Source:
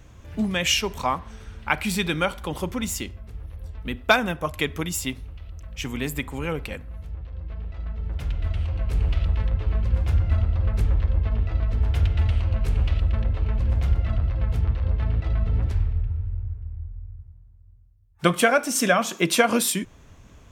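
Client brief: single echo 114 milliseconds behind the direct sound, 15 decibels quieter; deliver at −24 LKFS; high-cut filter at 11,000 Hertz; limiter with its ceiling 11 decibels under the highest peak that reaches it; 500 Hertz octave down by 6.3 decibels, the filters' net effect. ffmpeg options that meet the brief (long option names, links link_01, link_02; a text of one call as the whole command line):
ffmpeg -i in.wav -af "lowpass=11000,equalizer=frequency=500:width_type=o:gain=-8,alimiter=limit=-15.5dB:level=0:latency=1,aecho=1:1:114:0.178,volume=3dB" out.wav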